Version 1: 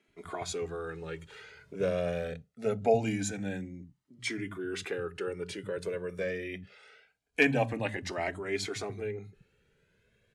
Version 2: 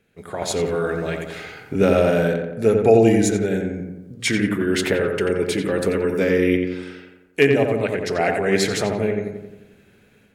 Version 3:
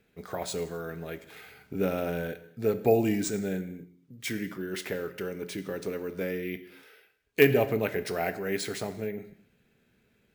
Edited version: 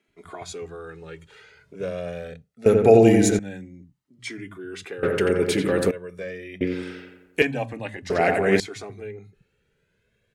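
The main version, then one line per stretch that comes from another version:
1
2.66–3.39 s: from 2
5.03–5.91 s: from 2
6.61–7.42 s: from 2
8.10–8.60 s: from 2
not used: 3

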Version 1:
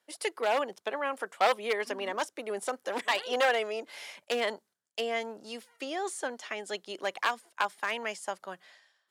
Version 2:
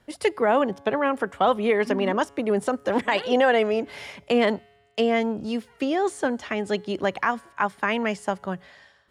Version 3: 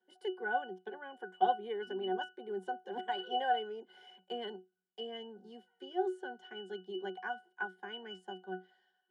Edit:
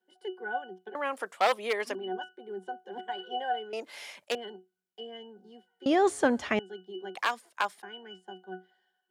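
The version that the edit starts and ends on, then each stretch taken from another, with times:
3
0.95–1.95 s: from 1
3.73–4.35 s: from 1
5.86–6.59 s: from 2
7.15–7.82 s: from 1

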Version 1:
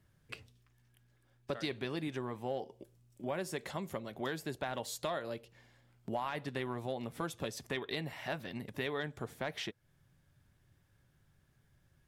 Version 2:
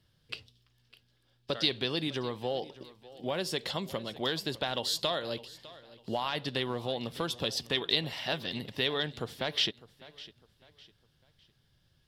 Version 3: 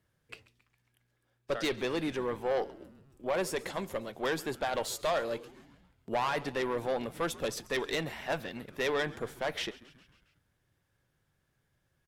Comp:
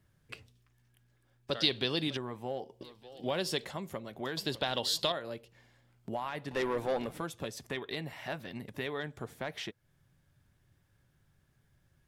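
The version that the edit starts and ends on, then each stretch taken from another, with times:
1
1.51–2.17 s: from 2
2.81–3.65 s: from 2
4.37–5.12 s: from 2
6.51–7.18 s: from 3

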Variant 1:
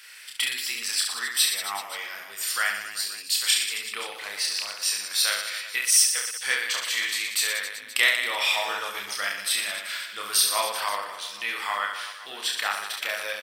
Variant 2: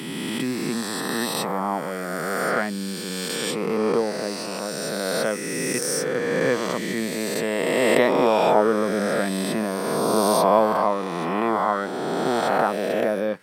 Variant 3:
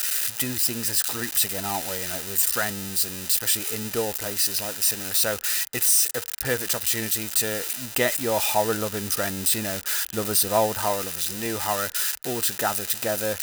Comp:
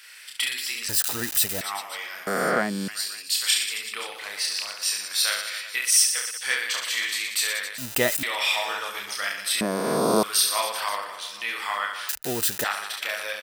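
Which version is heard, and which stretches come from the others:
1
0.89–1.61 s: from 3
2.27–2.88 s: from 2
7.78–8.23 s: from 3
9.61–10.23 s: from 2
12.09–12.64 s: from 3

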